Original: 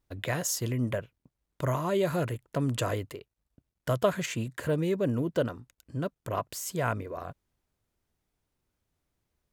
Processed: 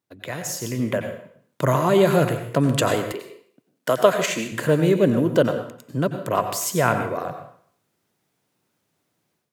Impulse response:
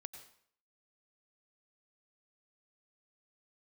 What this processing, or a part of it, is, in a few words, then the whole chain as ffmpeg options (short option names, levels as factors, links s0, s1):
far laptop microphone: -filter_complex "[1:a]atrim=start_sample=2205[s0];[0:a][s0]afir=irnorm=-1:irlink=0,highpass=f=130:w=0.5412,highpass=f=130:w=1.3066,dynaudnorm=f=550:g=3:m=3.76,asettb=1/sr,asplit=3[s1][s2][s3];[s1]atrim=end=3.124[s4];[s2]atrim=start=3.12:end=4.52,asetpts=PTS-STARTPTS,afade=t=in:d=0.004:c=qsin,afade=t=out:st=1.396:d=0.004:c=qsin,highpass=260[s5];[s3]atrim=start=4.516[s6];[s4][s5]acrossfade=d=0.004:c1=hsin:c2=qsin[s7];[s7][s6]acrossfade=d=0.004:c1=qsin:c2=hsin,volume=1.58"